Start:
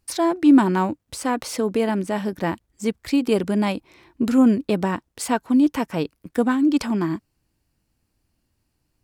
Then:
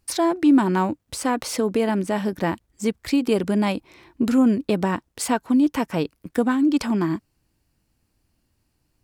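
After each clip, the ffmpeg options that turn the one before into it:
-af "acompressor=threshold=-22dB:ratio=1.5,volume=2dB"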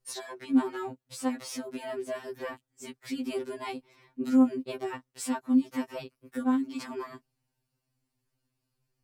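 -af "afftfilt=real='re*2.45*eq(mod(b,6),0)':imag='im*2.45*eq(mod(b,6),0)':win_size=2048:overlap=0.75,volume=-8dB"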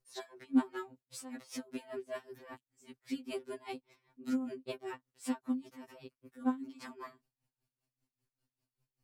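-af "aeval=exprs='val(0)*pow(10,-18*(0.5-0.5*cos(2*PI*5.1*n/s))/20)':c=same,volume=-2.5dB"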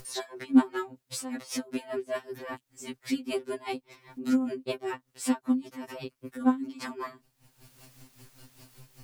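-af "acompressor=mode=upward:threshold=-40dB:ratio=2.5,volume=8.5dB"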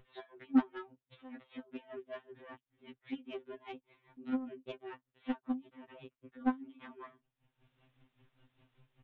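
-af "aresample=8000,aresample=44100,aeval=exprs='0.398*(cos(1*acos(clip(val(0)/0.398,-1,1)))-cos(1*PI/2))+0.0282*(cos(7*acos(clip(val(0)/0.398,-1,1)))-cos(7*PI/2))':c=same,volume=-7.5dB"

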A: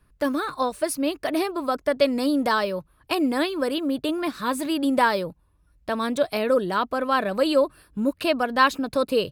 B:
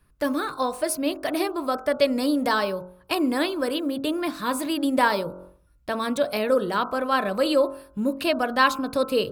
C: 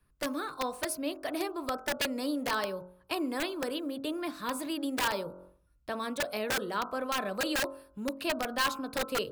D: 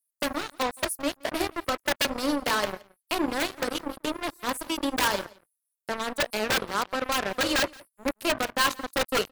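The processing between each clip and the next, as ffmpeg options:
-af "highshelf=f=9.3k:g=3.5,bandreject=f=45.4:t=h:w=4,bandreject=f=90.8:t=h:w=4,bandreject=f=136.2:t=h:w=4,bandreject=f=181.6:t=h:w=4,bandreject=f=227:t=h:w=4,bandreject=f=272.4:t=h:w=4,bandreject=f=317.8:t=h:w=4,bandreject=f=363.2:t=h:w=4,bandreject=f=408.6:t=h:w=4,bandreject=f=454:t=h:w=4,bandreject=f=499.4:t=h:w=4,bandreject=f=544.8:t=h:w=4,bandreject=f=590.2:t=h:w=4,bandreject=f=635.6:t=h:w=4,bandreject=f=681:t=h:w=4,bandreject=f=726.4:t=h:w=4,bandreject=f=771.8:t=h:w=4,bandreject=f=817.2:t=h:w=4,bandreject=f=862.6:t=h:w=4,bandreject=f=908:t=h:w=4,bandreject=f=953.4:t=h:w=4,bandreject=f=998.8:t=h:w=4,bandreject=f=1.0442k:t=h:w=4,bandreject=f=1.0896k:t=h:w=4,bandreject=f=1.135k:t=h:w=4,bandreject=f=1.1804k:t=h:w=4,bandreject=f=1.2258k:t=h:w=4,bandreject=f=1.2712k:t=h:w=4,bandreject=f=1.3166k:t=h:w=4,bandreject=f=1.362k:t=h:w=4,bandreject=f=1.4074k:t=h:w=4,bandreject=f=1.4528k:t=h:w=4,bandreject=f=1.4982k:t=h:w=4,bandreject=f=1.5436k:t=h:w=4,areverse,acompressor=mode=upward:threshold=-35dB:ratio=2.5,areverse"
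-filter_complex "[0:a]acrossover=split=250|1200[a][b][c];[a]alimiter=level_in=9dB:limit=-24dB:level=0:latency=1:release=397,volume=-9dB[d];[b]aeval=exprs='(mod(7.5*val(0)+1,2)-1)/7.5':c=same[e];[d][e][c]amix=inputs=3:normalize=0,volume=-8dB"
-filter_complex "[0:a]acrossover=split=7200[a][b];[a]acrusher=bits=4:mix=0:aa=0.5[c];[c][b]amix=inputs=2:normalize=0,aecho=1:1:172:0.0631,volume=5dB"

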